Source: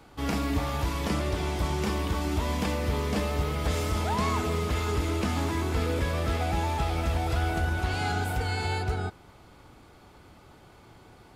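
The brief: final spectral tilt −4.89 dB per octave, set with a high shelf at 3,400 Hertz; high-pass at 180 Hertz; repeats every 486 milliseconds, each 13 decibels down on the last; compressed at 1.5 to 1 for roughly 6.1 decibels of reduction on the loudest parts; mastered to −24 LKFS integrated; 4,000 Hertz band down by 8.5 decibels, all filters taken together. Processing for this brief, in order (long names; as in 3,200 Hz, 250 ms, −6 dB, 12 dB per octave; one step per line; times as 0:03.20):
high-pass filter 180 Hz
high-shelf EQ 3,400 Hz −6 dB
parametric band 4,000 Hz −7 dB
downward compressor 1.5 to 1, threshold −44 dBFS
repeating echo 486 ms, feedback 22%, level −13 dB
level +14 dB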